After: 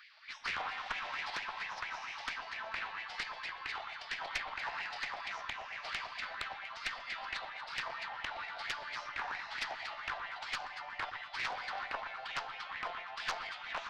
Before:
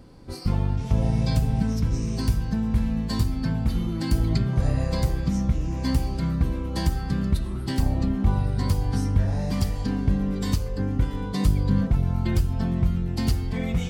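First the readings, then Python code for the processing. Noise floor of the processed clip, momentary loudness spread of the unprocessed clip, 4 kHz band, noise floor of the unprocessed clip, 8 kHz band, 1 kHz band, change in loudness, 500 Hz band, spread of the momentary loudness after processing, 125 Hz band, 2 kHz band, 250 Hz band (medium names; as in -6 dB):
-48 dBFS, 4 LU, -3.5 dB, -31 dBFS, -13.0 dB, -2.0 dB, -14.5 dB, -16.0 dB, 3 LU, under -40 dB, +4.5 dB, -38.0 dB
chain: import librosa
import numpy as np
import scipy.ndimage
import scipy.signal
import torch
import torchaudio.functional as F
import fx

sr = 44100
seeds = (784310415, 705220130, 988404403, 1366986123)

p1 = scipy.signal.sosfilt(scipy.signal.cheby2(4, 50, 9400.0, 'lowpass', fs=sr, output='sos'), x)
p2 = fx.spec_gate(p1, sr, threshold_db=-30, keep='weak')
p3 = scipy.signal.sosfilt(scipy.signal.butter(2, 450.0, 'highpass', fs=sr, output='sos'), p2)
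p4 = fx.rider(p3, sr, range_db=10, speed_s=2.0)
p5 = fx.filter_lfo_highpass(p4, sr, shape='sine', hz=4.4, low_hz=700.0, high_hz=2200.0, q=4.9)
p6 = fx.tube_stage(p5, sr, drive_db=27.0, bias=0.55)
p7 = p6 + fx.echo_alternate(p6, sr, ms=119, hz=1600.0, feedback_pct=64, wet_db=-9.0, dry=0)
p8 = fx.doppler_dist(p7, sr, depth_ms=0.99)
y = F.gain(torch.from_numpy(p8), 3.0).numpy()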